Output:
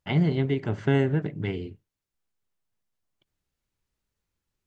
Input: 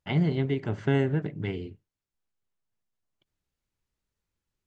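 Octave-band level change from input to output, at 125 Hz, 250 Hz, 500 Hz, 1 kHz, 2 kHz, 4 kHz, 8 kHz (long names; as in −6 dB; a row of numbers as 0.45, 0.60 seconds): +2.0 dB, +2.0 dB, +2.0 dB, +2.0 dB, +2.0 dB, +2.0 dB, can't be measured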